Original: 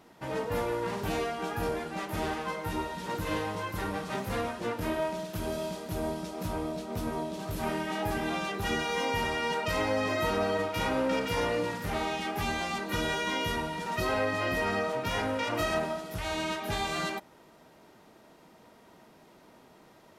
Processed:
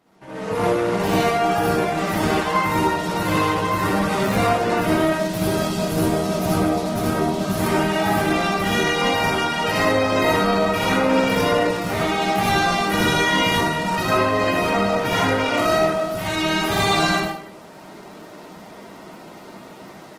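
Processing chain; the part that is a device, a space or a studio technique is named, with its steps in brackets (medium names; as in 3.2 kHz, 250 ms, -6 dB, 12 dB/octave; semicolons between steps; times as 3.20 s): far-field microphone of a smart speaker (reverberation RT60 0.65 s, pre-delay 55 ms, DRR -4.5 dB; high-pass 110 Hz 12 dB/octave; level rider gain up to 16.5 dB; trim -5.5 dB; Opus 16 kbps 48 kHz)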